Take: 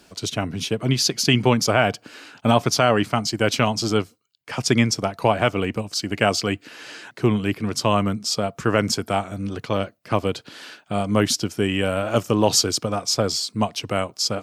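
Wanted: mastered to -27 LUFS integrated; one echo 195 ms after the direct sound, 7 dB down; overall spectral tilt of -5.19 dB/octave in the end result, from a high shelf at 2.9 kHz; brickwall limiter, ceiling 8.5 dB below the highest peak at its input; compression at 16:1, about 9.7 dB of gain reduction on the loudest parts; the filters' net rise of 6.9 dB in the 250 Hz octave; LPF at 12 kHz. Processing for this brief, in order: low-pass 12 kHz; peaking EQ 250 Hz +8.5 dB; treble shelf 2.9 kHz -8 dB; compression 16:1, threshold -17 dBFS; peak limiter -15.5 dBFS; delay 195 ms -7 dB; trim -0.5 dB

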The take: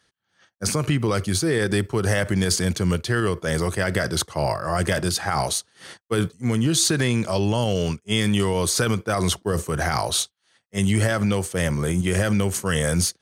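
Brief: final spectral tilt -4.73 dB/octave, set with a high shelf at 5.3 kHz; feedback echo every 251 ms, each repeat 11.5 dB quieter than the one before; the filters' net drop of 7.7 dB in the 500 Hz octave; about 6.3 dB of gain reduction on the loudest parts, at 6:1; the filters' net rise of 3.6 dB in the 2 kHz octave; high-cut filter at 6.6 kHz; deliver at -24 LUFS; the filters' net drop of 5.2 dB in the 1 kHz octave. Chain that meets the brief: low-pass 6.6 kHz; peaking EQ 500 Hz -8.5 dB; peaking EQ 1 kHz -7 dB; peaking EQ 2 kHz +8.5 dB; treble shelf 5.3 kHz -8.5 dB; compression 6:1, threshold -24 dBFS; feedback delay 251 ms, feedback 27%, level -11.5 dB; trim +4.5 dB

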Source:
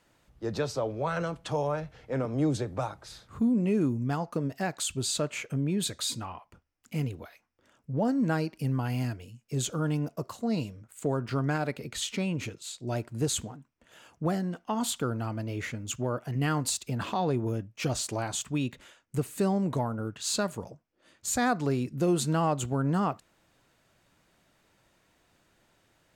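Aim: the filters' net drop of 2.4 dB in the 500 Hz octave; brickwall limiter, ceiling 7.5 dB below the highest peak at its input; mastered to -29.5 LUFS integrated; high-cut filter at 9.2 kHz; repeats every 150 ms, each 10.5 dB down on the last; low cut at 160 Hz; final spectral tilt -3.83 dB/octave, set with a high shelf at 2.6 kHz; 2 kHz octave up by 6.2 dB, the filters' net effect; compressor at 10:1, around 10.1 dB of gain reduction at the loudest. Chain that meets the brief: high-pass 160 Hz; low-pass 9.2 kHz; peaking EQ 500 Hz -3.5 dB; peaking EQ 2 kHz +6 dB; treble shelf 2.6 kHz +6 dB; compression 10:1, threshold -32 dBFS; peak limiter -26.5 dBFS; feedback delay 150 ms, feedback 30%, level -10.5 dB; trim +8.5 dB

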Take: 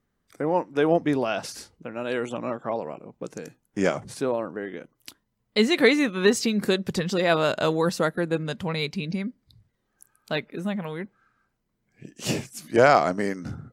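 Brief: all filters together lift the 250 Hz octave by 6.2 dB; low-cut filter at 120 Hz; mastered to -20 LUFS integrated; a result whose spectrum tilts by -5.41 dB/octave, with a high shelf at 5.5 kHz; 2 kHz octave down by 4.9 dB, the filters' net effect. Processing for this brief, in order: high-pass 120 Hz; peaking EQ 250 Hz +8.5 dB; peaking EQ 2 kHz -7 dB; treble shelf 5.5 kHz +3 dB; trim +2.5 dB

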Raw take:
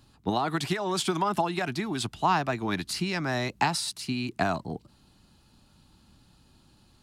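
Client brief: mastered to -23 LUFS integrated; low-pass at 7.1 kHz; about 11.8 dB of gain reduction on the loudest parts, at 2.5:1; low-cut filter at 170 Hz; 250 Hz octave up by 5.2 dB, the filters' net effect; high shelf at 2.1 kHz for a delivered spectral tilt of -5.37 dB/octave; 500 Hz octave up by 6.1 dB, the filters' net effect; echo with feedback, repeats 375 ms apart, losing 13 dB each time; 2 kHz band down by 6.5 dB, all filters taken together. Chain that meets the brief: high-pass 170 Hz; low-pass 7.1 kHz; peaking EQ 250 Hz +6 dB; peaking EQ 500 Hz +8 dB; peaking EQ 2 kHz -4.5 dB; treble shelf 2.1 kHz -8.5 dB; compression 2.5:1, threshold -37 dBFS; feedback delay 375 ms, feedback 22%, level -13 dB; trim +13.5 dB

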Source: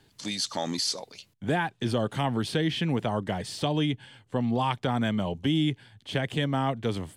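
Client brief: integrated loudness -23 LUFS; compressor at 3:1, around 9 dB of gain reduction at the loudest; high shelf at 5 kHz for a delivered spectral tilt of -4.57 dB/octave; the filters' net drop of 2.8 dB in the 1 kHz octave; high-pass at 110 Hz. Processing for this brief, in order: high-pass 110 Hz; peaking EQ 1 kHz -3.5 dB; treble shelf 5 kHz -5.5 dB; compression 3:1, threshold -35 dBFS; trim +14.5 dB

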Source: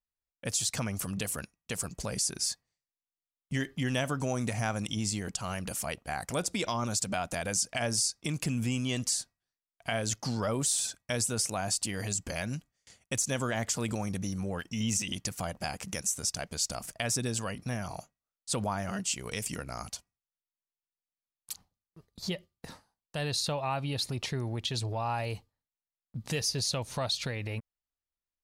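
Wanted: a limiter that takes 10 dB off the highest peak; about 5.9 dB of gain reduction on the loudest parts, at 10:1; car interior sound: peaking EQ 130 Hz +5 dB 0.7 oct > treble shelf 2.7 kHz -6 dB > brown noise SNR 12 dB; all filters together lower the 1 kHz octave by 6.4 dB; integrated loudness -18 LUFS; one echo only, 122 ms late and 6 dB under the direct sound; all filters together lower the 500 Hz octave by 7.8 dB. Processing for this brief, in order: peaking EQ 500 Hz -8.5 dB; peaking EQ 1 kHz -4.5 dB; compression 10:1, threshold -32 dBFS; peak limiter -29.5 dBFS; peaking EQ 130 Hz +5 dB 0.7 oct; treble shelf 2.7 kHz -6 dB; delay 122 ms -6 dB; brown noise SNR 12 dB; trim +21 dB

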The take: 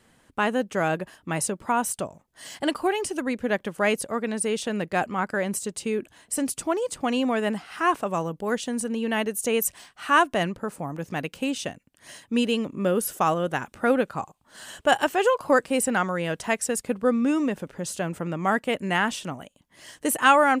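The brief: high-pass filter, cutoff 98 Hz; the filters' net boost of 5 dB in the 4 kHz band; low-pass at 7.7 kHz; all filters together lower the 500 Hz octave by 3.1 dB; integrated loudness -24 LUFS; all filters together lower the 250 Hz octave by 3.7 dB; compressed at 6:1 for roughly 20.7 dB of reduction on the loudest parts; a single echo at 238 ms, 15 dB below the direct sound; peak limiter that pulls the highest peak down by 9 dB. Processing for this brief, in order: high-pass 98 Hz; low-pass 7.7 kHz; peaking EQ 250 Hz -3.5 dB; peaking EQ 500 Hz -3 dB; peaking EQ 4 kHz +8 dB; compression 6:1, threshold -35 dBFS; peak limiter -29.5 dBFS; delay 238 ms -15 dB; trim +16 dB

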